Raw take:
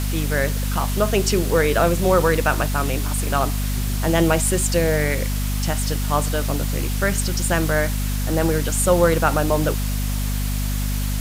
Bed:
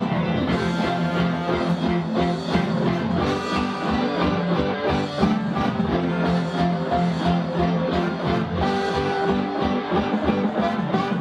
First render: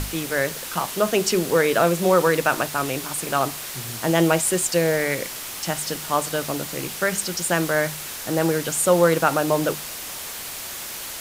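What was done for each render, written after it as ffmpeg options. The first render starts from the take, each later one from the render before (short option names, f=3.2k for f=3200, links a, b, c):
-af "bandreject=f=50:t=h:w=6,bandreject=f=100:t=h:w=6,bandreject=f=150:t=h:w=6,bandreject=f=200:t=h:w=6,bandreject=f=250:t=h:w=6"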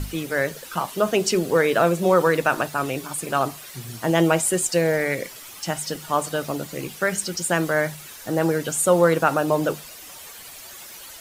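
-af "afftdn=nr=11:nf=-34"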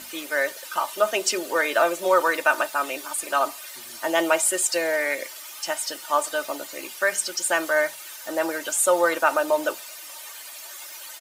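-af "highpass=590,aecho=1:1:3.3:0.57"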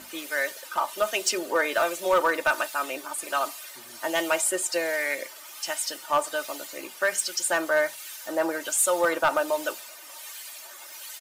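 -filter_complex "[0:a]acrossover=split=1700[a][b];[a]aeval=exprs='val(0)*(1-0.5/2+0.5/2*cos(2*PI*1.3*n/s))':c=same[c];[b]aeval=exprs='val(0)*(1-0.5/2-0.5/2*cos(2*PI*1.3*n/s))':c=same[d];[c][d]amix=inputs=2:normalize=0,volume=15dB,asoftclip=hard,volume=-15dB"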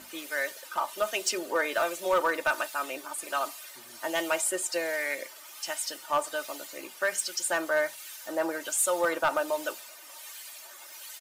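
-af "volume=-3.5dB"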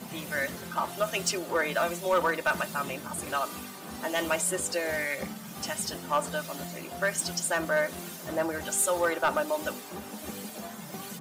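-filter_complex "[1:a]volume=-19.5dB[a];[0:a][a]amix=inputs=2:normalize=0"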